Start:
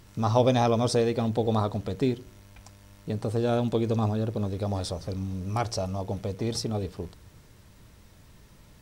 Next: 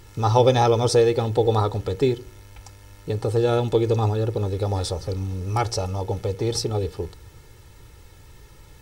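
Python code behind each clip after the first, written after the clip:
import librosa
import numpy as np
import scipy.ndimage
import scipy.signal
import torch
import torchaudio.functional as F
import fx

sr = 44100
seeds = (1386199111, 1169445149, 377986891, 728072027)

y = x + 0.66 * np.pad(x, (int(2.3 * sr / 1000.0), 0))[:len(x)]
y = y * librosa.db_to_amplitude(4.0)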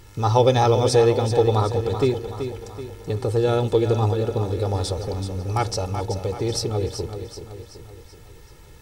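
y = fx.echo_feedback(x, sr, ms=380, feedback_pct=49, wet_db=-9)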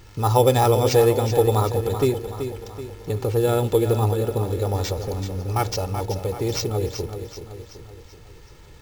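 y = np.repeat(x[::4], 4)[:len(x)]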